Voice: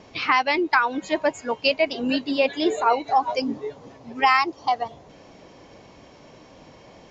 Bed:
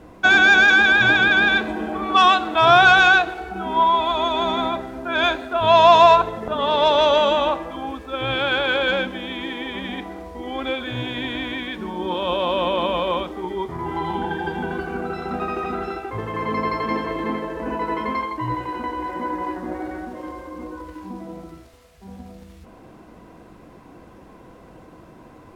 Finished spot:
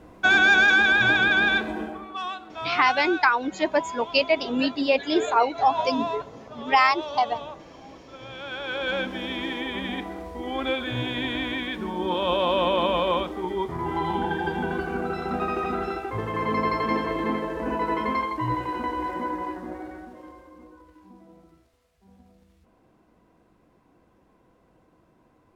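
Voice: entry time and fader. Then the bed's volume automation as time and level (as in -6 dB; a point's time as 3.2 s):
2.50 s, -0.5 dB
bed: 1.81 s -4 dB
2.15 s -18 dB
8.29 s -18 dB
9.2 s -1 dB
19.06 s -1 dB
20.82 s -16 dB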